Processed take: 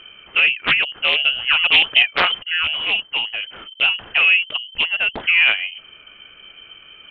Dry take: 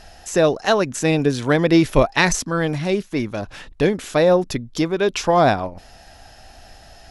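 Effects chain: spectral delete 4.88–5.1, 430–880 Hz; inverted band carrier 3100 Hz; Doppler distortion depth 0.44 ms

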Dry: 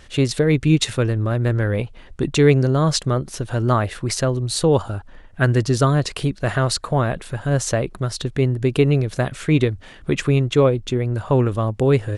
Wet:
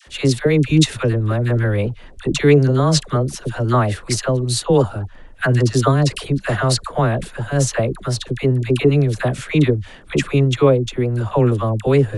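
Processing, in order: dispersion lows, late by 71 ms, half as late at 770 Hz; gain +2 dB

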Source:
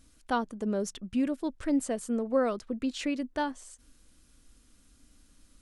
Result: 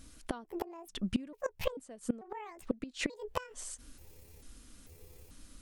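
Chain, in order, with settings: trilling pitch shifter +9 st, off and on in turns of 0.442 s; flipped gate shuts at -24 dBFS, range -24 dB; gain +6 dB

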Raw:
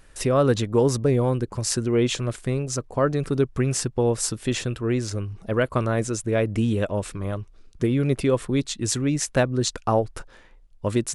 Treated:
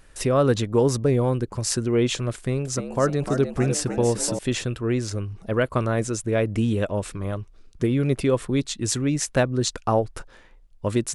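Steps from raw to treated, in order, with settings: 2.35–4.39 frequency-shifting echo 0.3 s, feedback 49%, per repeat +78 Hz, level -9 dB

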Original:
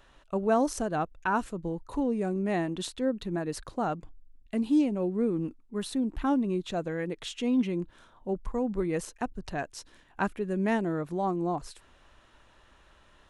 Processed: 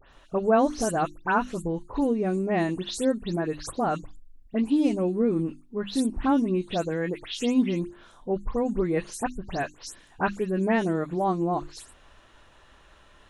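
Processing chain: spectral delay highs late, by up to 0.128 s; notches 50/100/150/200/250/300/350 Hz; gain +4.5 dB

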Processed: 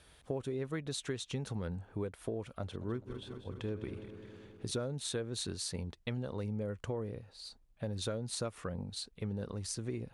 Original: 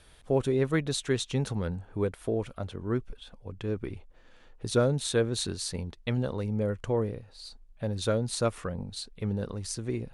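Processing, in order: 2.62–4.71 regenerating reverse delay 0.103 s, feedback 82%, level -12.5 dB; HPF 46 Hz; compressor 6:1, threshold -31 dBFS, peak gain reduction 11.5 dB; gain -3 dB

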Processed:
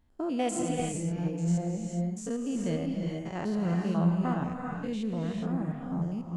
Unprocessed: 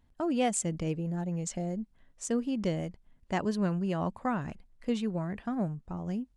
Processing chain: stepped spectrum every 0.1 s; non-linear reverb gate 0.45 s rising, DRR 1.5 dB

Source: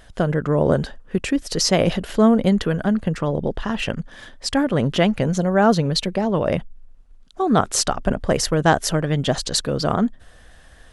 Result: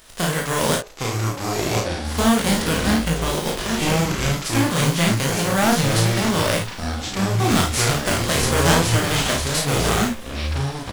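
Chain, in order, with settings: spectral whitening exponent 0.3; in parallel at -10 dB: wrapped overs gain 10 dB; 0.75–2.05 on the sum: ladder band-pass 610 Hz, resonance 55%; chorus 2.6 Hz, delay 18.5 ms, depth 5.8 ms; echoes that change speed 0.729 s, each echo -6 st, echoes 3; on a send: early reflections 36 ms -5 dB, 53 ms -7.5 dB; on the sum: gain -2 dB

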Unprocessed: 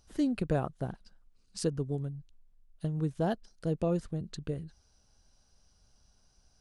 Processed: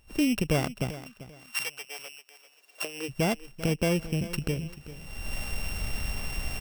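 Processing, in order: sample sorter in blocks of 16 samples; recorder AGC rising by 36 dB/s; 0.89–3.08 HPF 1200 Hz -> 360 Hz 24 dB/oct; feedback echo 0.392 s, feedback 28%, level -15 dB; gain +3.5 dB

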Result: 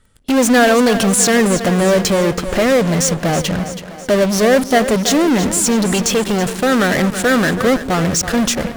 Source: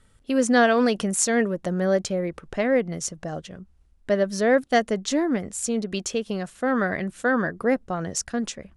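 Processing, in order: in parallel at -6.5 dB: fuzz box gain 48 dB, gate -49 dBFS; on the sum: split-band echo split 320 Hz, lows 0.133 s, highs 0.326 s, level -11 dB; 6.24–8.29 backlash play -27 dBFS; gain +2.5 dB

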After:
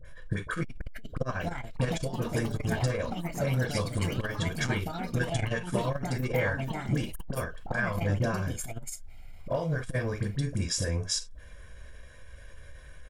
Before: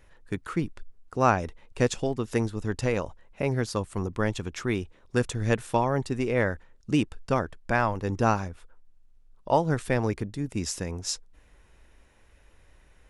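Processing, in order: low shelf 74 Hz -9 dB; comb 1.8 ms, depth 47%; compressor 5:1, threshold -35 dBFS, peak gain reduction 18 dB; dispersion highs, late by 51 ms, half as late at 1200 Hz; reverb, pre-delay 3 ms, DRR 4 dB; echoes that change speed 0.561 s, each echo +5 st, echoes 3, each echo -6 dB; core saturation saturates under 150 Hz; gain +3.5 dB

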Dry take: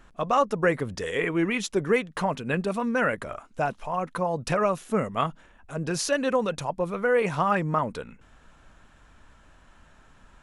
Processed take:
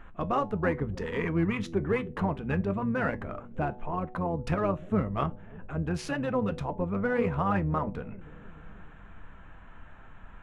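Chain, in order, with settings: Wiener smoothing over 9 samples; tone controls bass +7 dB, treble -12 dB; notch 570 Hz, Q 17; de-hum 123 Hz, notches 7; in parallel at -2 dB: compressor 5:1, threshold -36 dBFS, peak gain reduction 17.5 dB; on the sum: resonator 99 Hz, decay 0.19 s, harmonics all, mix 50%; analogue delay 0.302 s, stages 1024, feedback 62%, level -18.5 dB; harmoniser -12 st -7 dB; mismatched tape noise reduction encoder only; gain -3 dB

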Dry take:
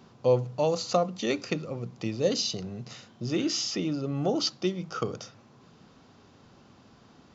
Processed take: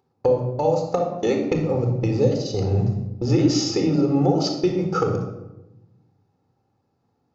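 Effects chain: thirty-one-band EQ 100 Hz +9 dB, 500 Hz +5 dB, 800 Hz +10 dB, 3150 Hz -8 dB; compressor 10:1, threshold -32 dBFS, peak gain reduction 19 dB; bell 280 Hz +4.5 dB 1.8 oct; upward compressor, threshold -40 dBFS; gate -36 dBFS, range -36 dB; shoebox room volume 3700 m³, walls furnished, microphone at 4.1 m; gain +8.5 dB

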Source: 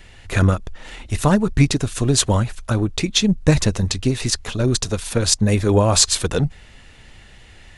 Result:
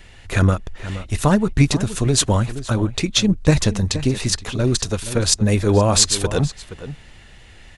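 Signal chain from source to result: outdoor echo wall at 81 m, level -13 dB

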